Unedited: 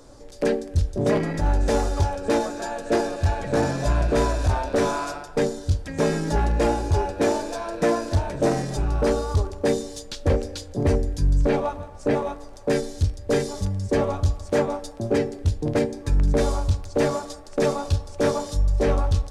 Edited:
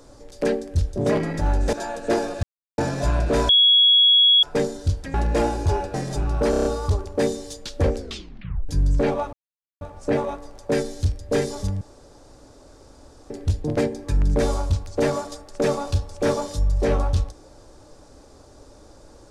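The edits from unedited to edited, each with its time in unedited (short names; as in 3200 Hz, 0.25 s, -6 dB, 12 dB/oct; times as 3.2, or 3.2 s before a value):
1.73–2.55 cut
3.25–3.6 mute
4.31–5.25 bleep 3340 Hz -11.5 dBFS
5.96–6.39 cut
7.19–8.55 cut
9.11 stutter 0.03 s, 6 plays
10.43 tape stop 0.72 s
11.79 insert silence 0.48 s
13.79–15.28 room tone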